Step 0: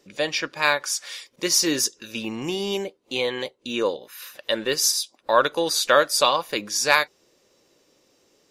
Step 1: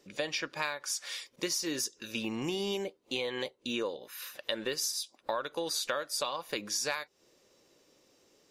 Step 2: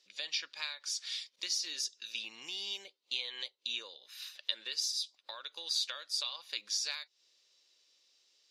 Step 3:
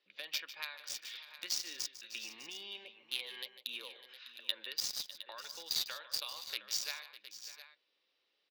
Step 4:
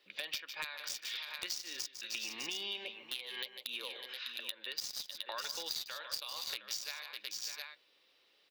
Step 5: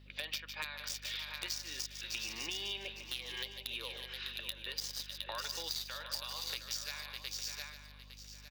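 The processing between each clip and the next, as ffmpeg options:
ffmpeg -i in.wav -af "acompressor=threshold=-26dB:ratio=16,volume=-3.5dB" out.wav
ffmpeg -i in.wav -af "bandpass=frequency=4100:width_type=q:width=2.1:csg=0,volume=4dB" out.wav
ffmpeg -i in.wav -filter_complex "[0:a]acrossover=split=390|3300[link_01][link_02][link_03];[link_03]acrusher=bits=4:mix=0:aa=0.5[link_04];[link_01][link_02][link_04]amix=inputs=3:normalize=0,aecho=1:1:150|602|712:0.211|0.168|0.224,volume=-1dB" out.wav
ffmpeg -i in.wav -af "acompressor=threshold=-45dB:ratio=12,aeval=exprs='0.02*(abs(mod(val(0)/0.02+3,4)-2)-1)':channel_layout=same,volume=10dB" out.wav
ffmpeg -i in.wav -af "aeval=exprs='val(0)+0.00158*(sin(2*PI*50*n/s)+sin(2*PI*2*50*n/s)/2+sin(2*PI*3*50*n/s)/3+sin(2*PI*4*50*n/s)/4+sin(2*PI*5*50*n/s)/5)':channel_layout=same,aecho=1:1:858|1716|2574:0.251|0.0628|0.0157" out.wav

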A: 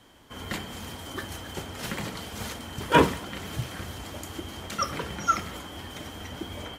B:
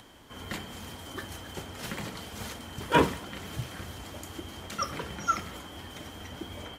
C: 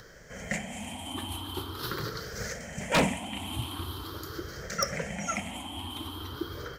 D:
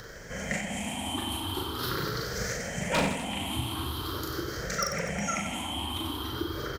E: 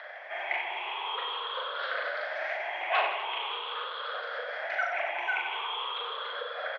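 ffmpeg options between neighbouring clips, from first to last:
ffmpeg -i in.wav -af "acompressor=mode=upward:threshold=-43dB:ratio=2.5,volume=-3.5dB" out.wav
ffmpeg -i in.wav -af "afftfilt=real='re*pow(10,17/40*sin(2*PI*(0.57*log(max(b,1)*sr/1024/100)/log(2)-(0.44)*(pts-256)/sr)))':imag='im*pow(10,17/40*sin(2*PI*(0.57*log(max(b,1)*sr/1024/100)/log(2)-(0.44)*(pts-256)/sr)))':win_size=1024:overlap=0.75,aeval=exprs='0.158*(abs(mod(val(0)/0.158+3,4)-2)-1)':channel_layout=same" out.wav
ffmpeg -i in.wav -filter_complex "[0:a]acompressor=threshold=-38dB:ratio=2,asplit=2[link_01][link_02];[link_02]aecho=0:1:40|92|159.6|247.5|361.7:0.631|0.398|0.251|0.158|0.1[link_03];[link_01][link_03]amix=inputs=2:normalize=0,volume=5dB" out.wav
ffmpeg -i in.wav -filter_complex "[0:a]asplit=2[link_01][link_02];[link_02]volume=31.5dB,asoftclip=hard,volume=-31.5dB,volume=-5dB[link_03];[link_01][link_03]amix=inputs=2:normalize=0,highpass=frequency=430:width_type=q:width=0.5412,highpass=frequency=430:width_type=q:width=1.307,lowpass=frequency=3100:width_type=q:width=0.5176,lowpass=frequency=3100:width_type=q:width=0.7071,lowpass=frequency=3100:width_type=q:width=1.932,afreqshift=150" out.wav

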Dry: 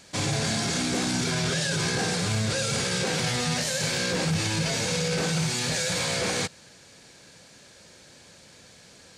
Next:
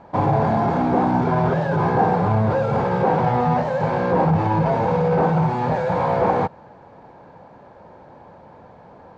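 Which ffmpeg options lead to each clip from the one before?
ffmpeg -i in.wav -af "lowpass=frequency=890:width_type=q:width=4,volume=7.5dB" out.wav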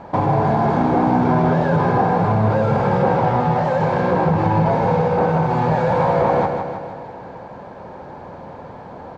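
ffmpeg -i in.wav -filter_complex "[0:a]acompressor=threshold=-29dB:ratio=2,asplit=2[link_01][link_02];[link_02]aecho=0:1:158|316|474|632|790|948|1106|1264:0.501|0.291|0.169|0.0978|0.0567|0.0329|0.0191|0.0111[link_03];[link_01][link_03]amix=inputs=2:normalize=0,volume=8dB" out.wav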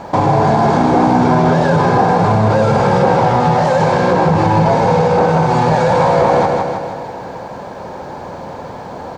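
ffmpeg -i in.wav -filter_complex "[0:a]bass=frequency=250:gain=-2,treble=frequency=4000:gain=13,asplit=2[link_01][link_02];[link_02]alimiter=limit=-13.5dB:level=0:latency=1,volume=3dB[link_03];[link_01][link_03]amix=inputs=2:normalize=0" out.wav

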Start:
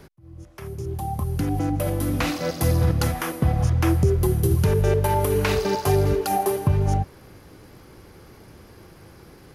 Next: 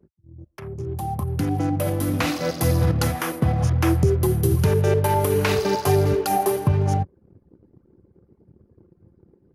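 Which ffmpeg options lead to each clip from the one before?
ffmpeg -i in.wav -af "highpass=frequency=78:width=0.5412,highpass=frequency=78:width=1.3066,anlmdn=0.631,volume=1.5dB" out.wav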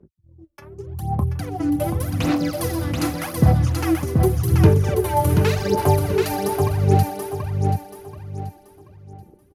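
ffmpeg -i in.wav -filter_complex "[0:a]aphaser=in_gain=1:out_gain=1:delay=3.5:decay=0.74:speed=0.86:type=sinusoidal,asplit=2[link_01][link_02];[link_02]aecho=0:1:732|1464|2196|2928:0.631|0.196|0.0606|0.0188[link_03];[link_01][link_03]amix=inputs=2:normalize=0,volume=-5.5dB" out.wav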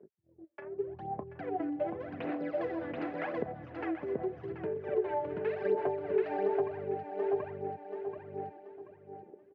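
ffmpeg -i in.wav -af "acompressor=threshold=-26dB:ratio=12,highpass=270,equalizer=frequency=420:width_type=q:width=4:gain=10,equalizer=frequency=650:width_type=q:width=4:gain=8,equalizer=frequency=1200:width_type=q:width=4:gain=-4,equalizer=frequency=1700:width_type=q:width=4:gain=5,lowpass=frequency=2500:width=0.5412,lowpass=frequency=2500:width=1.3066,volume=-5.5dB" out.wav

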